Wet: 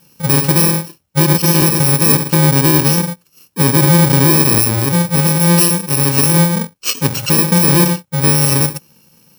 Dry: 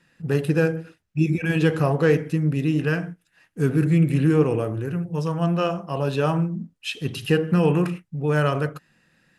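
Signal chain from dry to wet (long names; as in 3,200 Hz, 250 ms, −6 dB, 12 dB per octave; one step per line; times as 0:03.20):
samples in bit-reversed order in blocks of 64 samples
high-pass filter 180 Hz 6 dB per octave
low-shelf EQ 280 Hz +6 dB
boost into a limiter +13 dB
level −1 dB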